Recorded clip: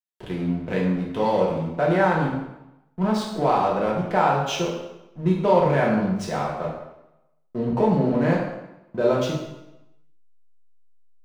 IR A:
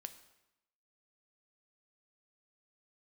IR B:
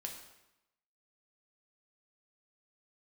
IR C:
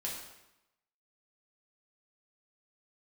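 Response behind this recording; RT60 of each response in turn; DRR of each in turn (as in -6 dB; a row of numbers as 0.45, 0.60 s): C; 0.90, 0.90, 0.90 s; 9.0, 1.0, -4.5 dB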